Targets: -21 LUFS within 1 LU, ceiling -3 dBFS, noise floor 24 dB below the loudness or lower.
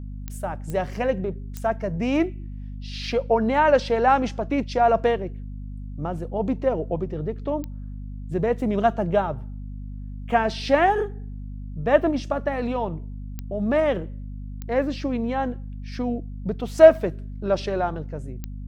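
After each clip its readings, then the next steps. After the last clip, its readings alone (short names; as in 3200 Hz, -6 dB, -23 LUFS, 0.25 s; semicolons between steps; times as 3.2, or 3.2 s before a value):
clicks 7; hum 50 Hz; harmonics up to 250 Hz; hum level -32 dBFS; loudness -23.5 LUFS; peak -1.5 dBFS; loudness target -21.0 LUFS
-> de-click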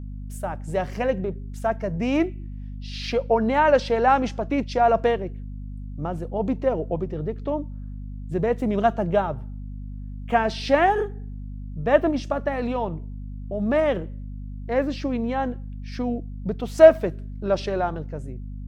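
clicks 0; hum 50 Hz; harmonics up to 250 Hz; hum level -32 dBFS
-> de-hum 50 Hz, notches 5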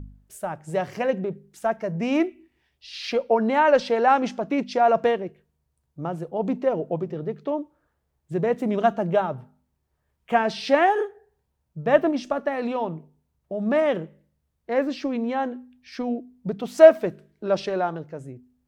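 hum none; loudness -23.5 LUFS; peak -2.0 dBFS; loudness target -21.0 LUFS
-> gain +2.5 dB; limiter -3 dBFS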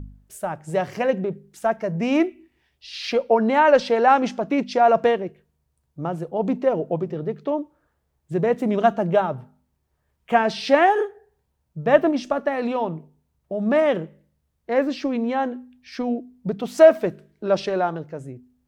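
loudness -21.5 LUFS; peak -3.0 dBFS; noise floor -72 dBFS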